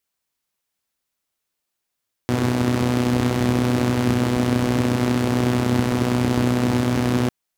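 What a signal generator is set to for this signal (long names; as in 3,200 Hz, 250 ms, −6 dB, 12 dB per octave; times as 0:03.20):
pulse-train model of a four-cylinder engine, steady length 5.00 s, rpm 3,700, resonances 110/230 Hz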